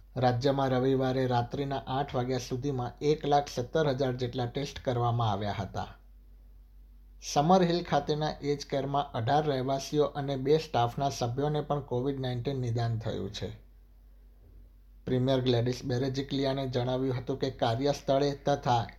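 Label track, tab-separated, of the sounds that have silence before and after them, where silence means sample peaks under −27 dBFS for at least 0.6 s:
7.290000	13.460000	sound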